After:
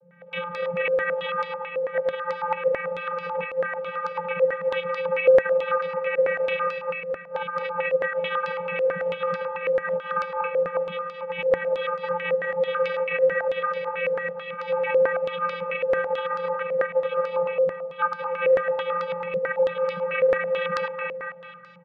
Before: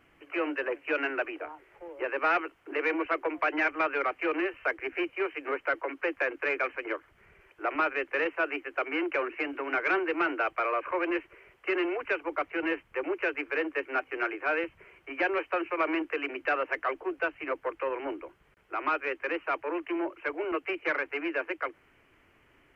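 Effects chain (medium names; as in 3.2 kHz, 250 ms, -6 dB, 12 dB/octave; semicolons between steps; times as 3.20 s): backward echo that repeats 126 ms, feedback 49%, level -1 dB; compressor with a negative ratio -29 dBFS, ratio -0.5; comb 5.4 ms, depth 99%; vocoder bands 16, square 167 Hz; on a send: thinning echo 226 ms, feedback 65%, high-pass 830 Hz, level -4.5 dB; on the sum: Schroeder reverb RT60 3.9 s, combs from 25 ms, DRR 16.5 dB; speed mistake 24 fps film run at 25 fps; step-sequenced low-pass 9.1 Hz 510–4700 Hz; trim -3 dB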